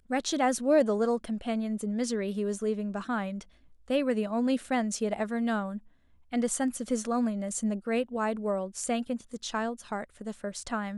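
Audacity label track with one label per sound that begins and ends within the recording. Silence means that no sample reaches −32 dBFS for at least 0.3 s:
3.900000	5.770000	sound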